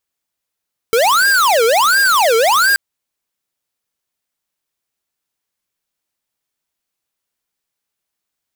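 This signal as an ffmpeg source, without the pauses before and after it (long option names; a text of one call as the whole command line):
ffmpeg -f lavfi -i "aevalsrc='0.251*(2*lt(mod((1033*t-587/(2*PI*1.4)*sin(2*PI*1.4*t)),1),0.5)-1)':duration=1.83:sample_rate=44100" out.wav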